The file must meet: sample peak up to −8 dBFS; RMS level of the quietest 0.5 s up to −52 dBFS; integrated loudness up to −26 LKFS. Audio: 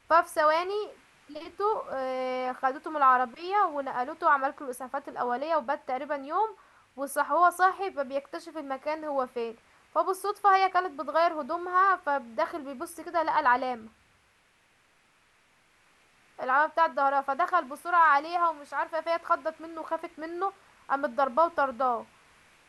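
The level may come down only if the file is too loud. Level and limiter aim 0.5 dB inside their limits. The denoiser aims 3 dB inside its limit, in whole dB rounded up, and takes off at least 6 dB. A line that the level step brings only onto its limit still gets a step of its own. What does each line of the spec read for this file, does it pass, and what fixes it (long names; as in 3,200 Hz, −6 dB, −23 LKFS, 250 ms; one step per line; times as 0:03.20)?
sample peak −10.5 dBFS: in spec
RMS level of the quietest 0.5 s −65 dBFS: in spec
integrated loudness −27.5 LKFS: in spec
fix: no processing needed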